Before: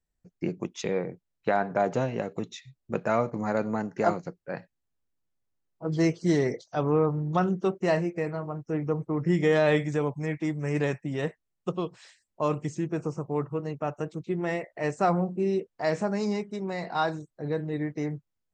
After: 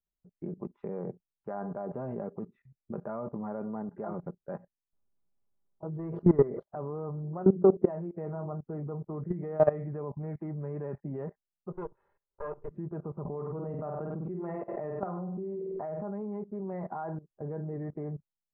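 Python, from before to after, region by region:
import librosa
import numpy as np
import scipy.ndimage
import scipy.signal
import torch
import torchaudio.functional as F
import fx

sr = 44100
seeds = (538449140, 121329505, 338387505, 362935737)

y = fx.chain(x, sr, fx.leveller(passes=1),
    fx.sustainer(db_per_s=130.0), at=(5.99, 6.63))
y = fx.chain(y, sr, fx.peak_eq(hz=430.0, db=6.5, octaves=1.9),
    fx.hum_notches(base_hz=60, count=8), at=(7.23, 7.89))
y = fx.chain(y, sr, fx.lower_of_two(delay_ms=2.3),
    fx.low_shelf(hz=500.0, db=-5.0),
    fx.comb(ms=2.0, depth=0.44), at=(11.72, 12.71))
y = fx.chain(y, sr, fx.room_flutter(wall_m=8.5, rt60_s=0.42),
    fx.pre_swell(db_per_s=62.0), at=(13.25, 16.04))
y = scipy.signal.sosfilt(scipy.signal.butter(4, 1200.0, 'lowpass', fs=sr, output='sos'), y)
y = y + 0.43 * np.pad(y, (int(5.0 * sr / 1000.0), 0))[:len(y)]
y = fx.level_steps(y, sr, step_db=19)
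y = y * 10.0 ** (2.0 / 20.0)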